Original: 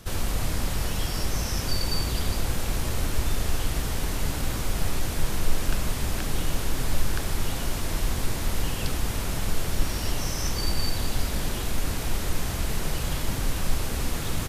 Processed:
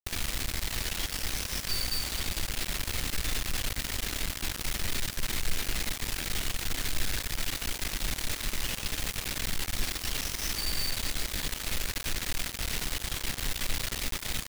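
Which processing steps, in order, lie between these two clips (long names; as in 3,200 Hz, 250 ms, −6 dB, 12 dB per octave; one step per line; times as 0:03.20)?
graphic EQ with 10 bands 125 Hz −6 dB, 500 Hz −4 dB, 1,000 Hz −9 dB, 2,000 Hz +8 dB, 4,000 Hz +7 dB
bit reduction 4 bits
level −8.5 dB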